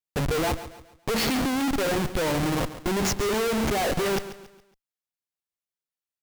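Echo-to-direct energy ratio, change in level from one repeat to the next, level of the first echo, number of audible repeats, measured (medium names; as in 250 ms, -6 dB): -13.0 dB, -8.0 dB, -13.5 dB, 3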